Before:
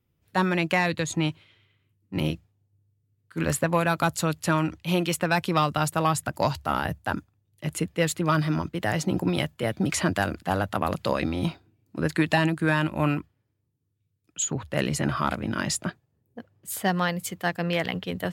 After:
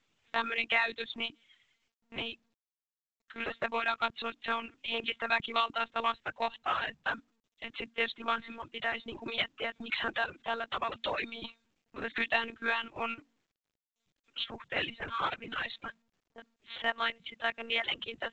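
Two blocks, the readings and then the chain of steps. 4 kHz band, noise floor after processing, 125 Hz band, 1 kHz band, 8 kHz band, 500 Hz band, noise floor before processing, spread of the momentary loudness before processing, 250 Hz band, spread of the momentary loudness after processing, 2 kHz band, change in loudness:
−1.0 dB, below −85 dBFS, −28.5 dB, −6.5 dB, below −30 dB, −10.5 dB, −74 dBFS, 7 LU, −19.0 dB, 11 LU, −3.0 dB, −7.5 dB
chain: gain on one half-wave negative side −3 dB
mains-hum notches 60/120/180/240/300 Hz
one-pitch LPC vocoder at 8 kHz 230 Hz
in parallel at −0.5 dB: downward compressor 6 to 1, threshold −39 dBFS, peak gain reduction 19.5 dB
on the sum: spectral tilt +4.5 dB per octave
reverb reduction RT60 1 s
level −5 dB
mu-law 128 kbit/s 16,000 Hz

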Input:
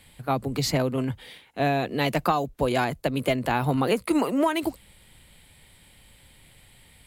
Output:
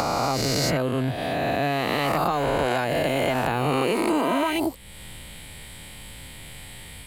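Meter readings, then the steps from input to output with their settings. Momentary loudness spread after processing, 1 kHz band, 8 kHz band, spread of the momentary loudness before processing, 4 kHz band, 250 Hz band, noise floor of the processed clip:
18 LU, +2.5 dB, +5.5 dB, 6 LU, +4.5 dB, 0.0 dB, −42 dBFS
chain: peak hold with a rise ahead of every peak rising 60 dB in 2.19 s
in parallel at 0 dB: brickwall limiter −14.5 dBFS, peak gain reduction 8.5 dB
on the sum: downward compressor 2 to 1, threshold −33 dBFS, peak gain reduction 12 dB
level +3.5 dB

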